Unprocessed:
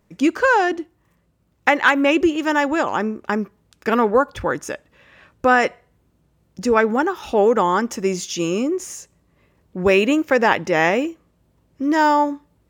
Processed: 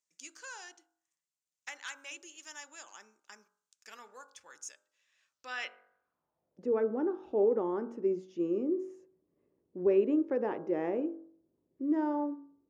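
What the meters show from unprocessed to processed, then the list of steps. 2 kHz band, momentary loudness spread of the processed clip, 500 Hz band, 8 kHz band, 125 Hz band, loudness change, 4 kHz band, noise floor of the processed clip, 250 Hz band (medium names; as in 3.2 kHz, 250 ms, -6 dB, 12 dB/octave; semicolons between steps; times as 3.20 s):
-25.5 dB, 21 LU, -13.0 dB, -15.5 dB, -20.0 dB, -13.5 dB, -20.5 dB, under -85 dBFS, -13.5 dB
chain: de-hum 46.77 Hz, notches 35; band-pass sweep 6.8 kHz -> 360 Hz, 5.28–6.74 s; trim -7 dB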